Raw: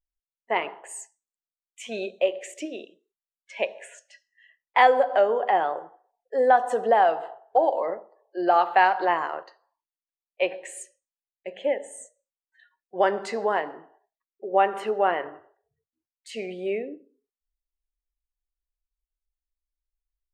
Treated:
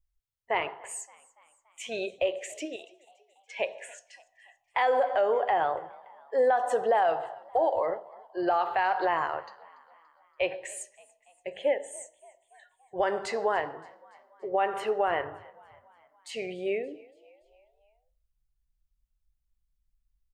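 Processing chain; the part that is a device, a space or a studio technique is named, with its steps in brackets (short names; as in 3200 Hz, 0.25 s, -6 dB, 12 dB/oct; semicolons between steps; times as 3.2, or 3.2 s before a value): car stereo with a boomy subwoofer (resonant low shelf 150 Hz +12 dB, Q 3; limiter -16.5 dBFS, peak gain reduction 10 dB); 2.76–3.58 HPF 960 Hz 6 dB/oct; frequency-shifting echo 0.286 s, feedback 56%, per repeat +53 Hz, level -23.5 dB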